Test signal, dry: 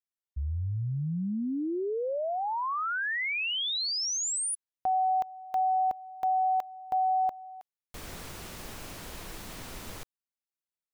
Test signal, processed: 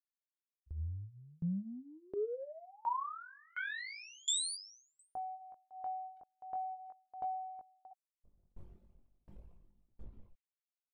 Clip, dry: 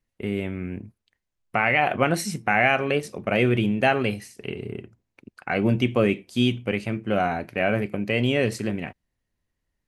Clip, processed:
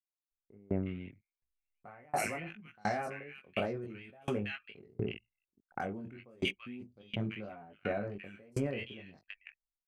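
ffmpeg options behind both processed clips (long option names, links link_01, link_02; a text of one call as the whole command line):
ffmpeg -i in.wav -filter_complex "[0:a]acrossover=split=1600|5100[link_01][link_02][link_03];[link_01]adelay=300[link_04];[link_02]adelay=630[link_05];[link_04][link_05][link_03]amix=inputs=3:normalize=0,anlmdn=2.51,flanger=delay=18.5:depth=3.5:speed=0.4,areverse,acompressor=threshold=-37dB:ratio=12:attack=72:release=26:knee=1:detection=rms,areverse,aeval=exprs='val(0)*pow(10,-32*if(lt(mod(1.4*n/s,1),2*abs(1.4)/1000),1-mod(1.4*n/s,1)/(2*abs(1.4)/1000),(mod(1.4*n/s,1)-2*abs(1.4)/1000)/(1-2*abs(1.4)/1000))/20)':channel_layout=same,volume=4.5dB" out.wav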